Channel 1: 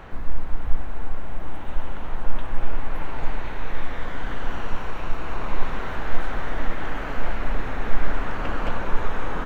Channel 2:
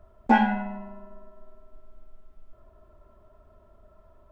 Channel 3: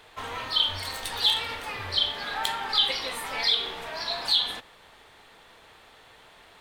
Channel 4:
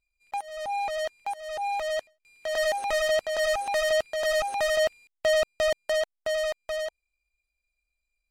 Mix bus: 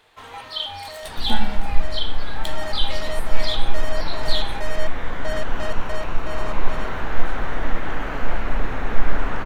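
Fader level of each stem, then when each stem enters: +2.5, −8.5, −4.5, −7.5 decibels; 1.05, 1.00, 0.00, 0.00 seconds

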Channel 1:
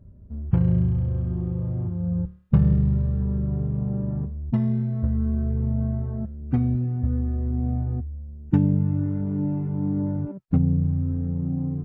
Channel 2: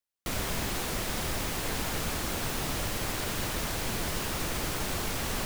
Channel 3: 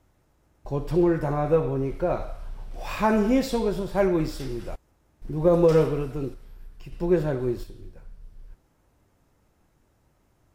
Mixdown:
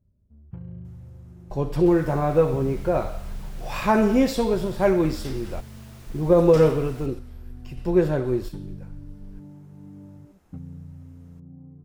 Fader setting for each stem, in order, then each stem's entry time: −18.5, −18.5, +2.5 decibels; 0.00, 1.60, 0.85 seconds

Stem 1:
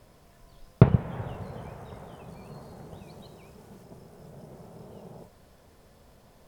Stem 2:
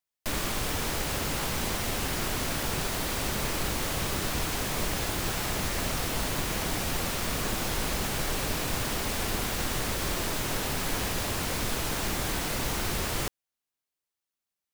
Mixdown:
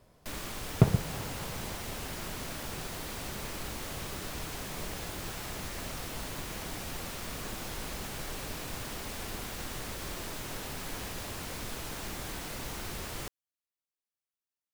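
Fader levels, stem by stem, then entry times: −5.5, −9.0 decibels; 0.00, 0.00 seconds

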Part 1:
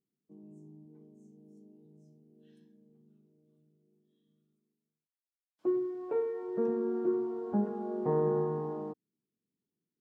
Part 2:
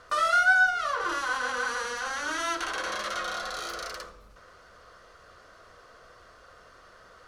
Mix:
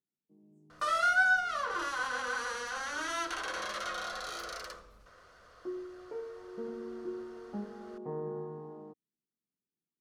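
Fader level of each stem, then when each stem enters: −9.5, −5.0 decibels; 0.00, 0.70 seconds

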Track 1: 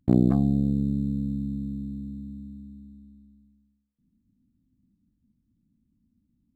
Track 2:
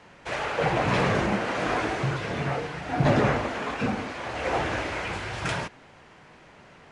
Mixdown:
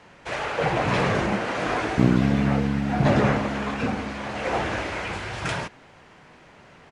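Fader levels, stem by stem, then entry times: +0.5, +1.0 decibels; 1.90, 0.00 seconds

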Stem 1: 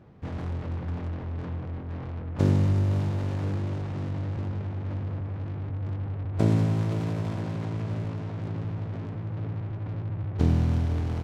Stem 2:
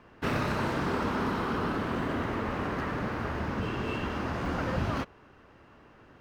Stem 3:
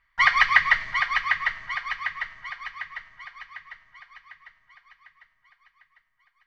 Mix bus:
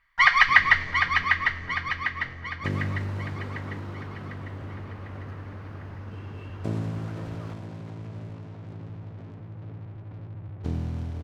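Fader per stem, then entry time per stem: −7.5, −13.5, +1.0 decibels; 0.25, 2.50, 0.00 seconds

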